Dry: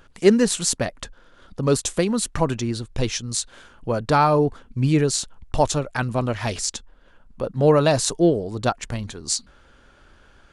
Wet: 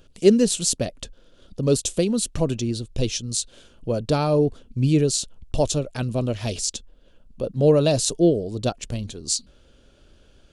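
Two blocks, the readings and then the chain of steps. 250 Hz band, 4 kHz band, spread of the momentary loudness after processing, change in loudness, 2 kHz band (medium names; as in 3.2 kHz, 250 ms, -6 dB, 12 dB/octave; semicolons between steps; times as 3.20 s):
0.0 dB, 0.0 dB, 13 LU, -0.5 dB, -8.0 dB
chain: high-order bell 1.3 kHz -11.5 dB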